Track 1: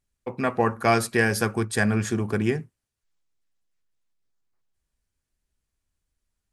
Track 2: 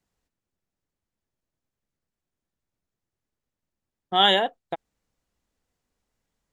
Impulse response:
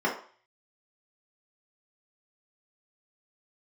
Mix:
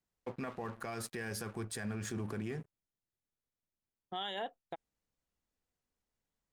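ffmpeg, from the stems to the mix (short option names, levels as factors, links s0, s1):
-filter_complex "[0:a]acompressor=threshold=0.0708:ratio=6,aeval=exprs='sgn(val(0))*max(abs(val(0))-0.00501,0)':c=same,volume=0.531[s0];[1:a]alimiter=limit=0.282:level=0:latency=1:release=255,volume=0.316[s1];[s0][s1]amix=inputs=2:normalize=0,alimiter=level_in=2.11:limit=0.0631:level=0:latency=1:release=24,volume=0.473"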